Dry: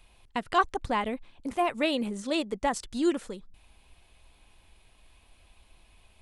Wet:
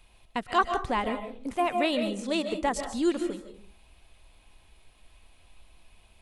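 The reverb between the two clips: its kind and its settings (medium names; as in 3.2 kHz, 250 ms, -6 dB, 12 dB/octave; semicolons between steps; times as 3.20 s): algorithmic reverb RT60 0.43 s, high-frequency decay 0.35×, pre-delay 105 ms, DRR 7 dB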